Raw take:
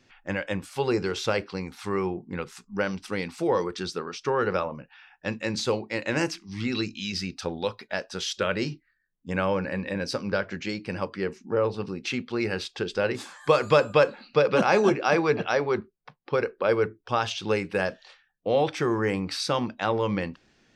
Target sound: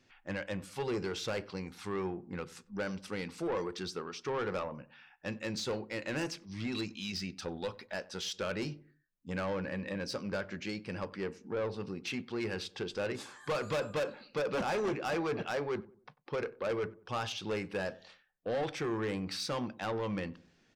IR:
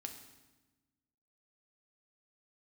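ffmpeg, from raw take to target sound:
-filter_complex "[0:a]asoftclip=type=tanh:threshold=-23dB,asplit=2[link_01][link_02];[link_02]adelay=94,lowpass=frequency=950:poles=1,volume=-18dB,asplit=2[link_03][link_04];[link_04]adelay=94,lowpass=frequency=950:poles=1,volume=0.4,asplit=2[link_05][link_06];[link_06]adelay=94,lowpass=frequency=950:poles=1,volume=0.4[link_07];[link_01][link_03][link_05][link_07]amix=inputs=4:normalize=0,volume=-6dB"

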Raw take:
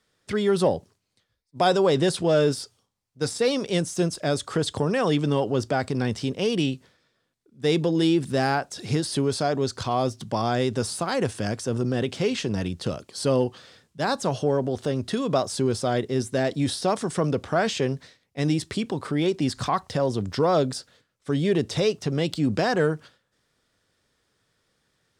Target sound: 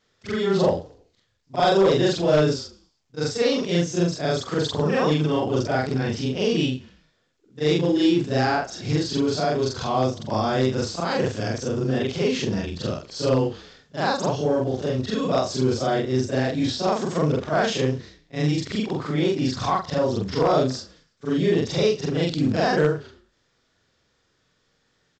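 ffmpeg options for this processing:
ffmpeg -i in.wav -filter_complex "[0:a]afftfilt=real='re':imag='-im':win_size=4096:overlap=0.75,aeval=exprs='0.158*(abs(mod(val(0)/0.158+3,4)-2)-1)':channel_layout=same,acontrast=56,asplit=4[link_01][link_02][link_03][link_04];[link_02]adelay=109,afreqshift=-33,volume=-22.5dB[link_05];[link_03]adelay=218,afreqshift=-66,volume=-30.7dB[link_06];[link_04]adelay=327,afreqshift=-99,volume=-38.9dB[link_07];[link_01][link_05][link_06][link_07]amix=inputs=4:normalize=0" -ar 16000 -c:a pcm_mulaw out.wav

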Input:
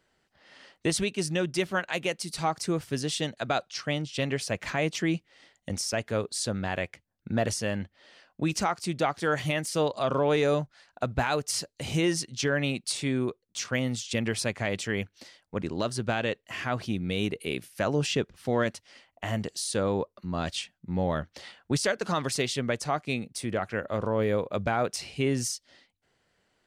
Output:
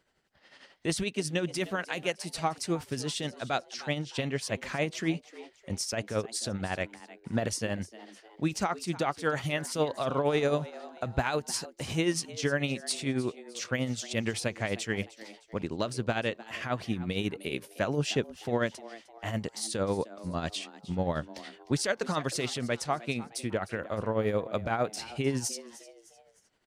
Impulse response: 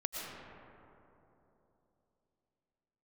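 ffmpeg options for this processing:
-filter_complex "[0:a]tremolo=f=11:d=0.57,asplit=4[link_01][link_02][link_03][link_04];[link_02]adelay=306,afreqshift=110,volume=-17.5dB[link_05];[link_03]adelay=612,afreqshift=220,volume=-25dB[link_06];[link_04]adelay=918,afreqshift=330,volume=-32.6dB[link_07];[link_01][link_05][link_06][link_07]amix=inputs=4:normalize=0"

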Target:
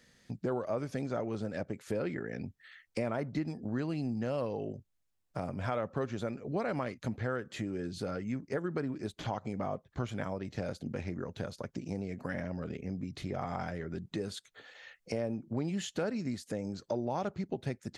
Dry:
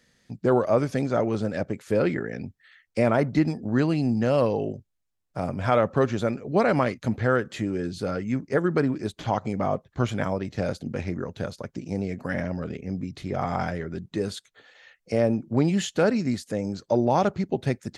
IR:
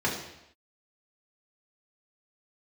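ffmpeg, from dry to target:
-af "acompressor=threshold=-37dB:ratio=2.5"

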